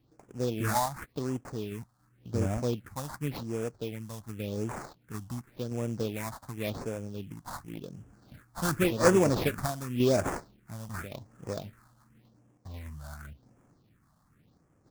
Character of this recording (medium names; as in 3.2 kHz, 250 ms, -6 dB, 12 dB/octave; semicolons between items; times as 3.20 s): aliases and images of a low sample rate 3 kHz, jitter 20%; phasing stages 4, 0.9 Hz, lowest notch 390–4000 Hz; random-step tremolo